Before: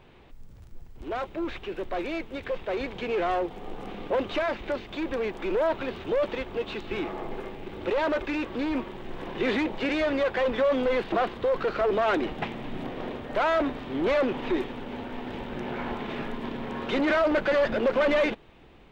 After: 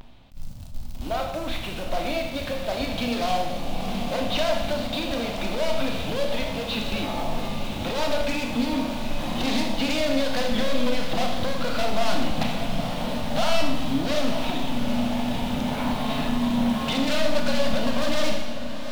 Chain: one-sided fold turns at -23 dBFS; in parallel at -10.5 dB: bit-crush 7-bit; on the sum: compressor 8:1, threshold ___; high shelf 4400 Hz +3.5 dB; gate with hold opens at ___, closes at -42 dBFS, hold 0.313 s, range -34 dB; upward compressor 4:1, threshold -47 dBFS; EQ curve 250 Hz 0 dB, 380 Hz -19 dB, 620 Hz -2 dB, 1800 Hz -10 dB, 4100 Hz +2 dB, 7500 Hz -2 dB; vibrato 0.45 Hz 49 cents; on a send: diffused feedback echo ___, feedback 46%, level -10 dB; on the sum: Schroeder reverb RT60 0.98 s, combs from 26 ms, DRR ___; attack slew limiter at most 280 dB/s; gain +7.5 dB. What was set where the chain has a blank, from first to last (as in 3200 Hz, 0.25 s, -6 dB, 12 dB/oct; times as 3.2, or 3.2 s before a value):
-27 dBFS, -40 dBFS, 0.81 s, 2 dB